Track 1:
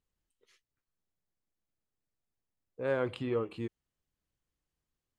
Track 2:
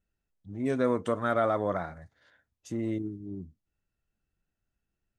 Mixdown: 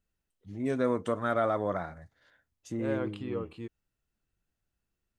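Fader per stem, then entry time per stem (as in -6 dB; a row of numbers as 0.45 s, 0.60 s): -3.5 dB, -1.5 dB; 0.00 s, 0.00 s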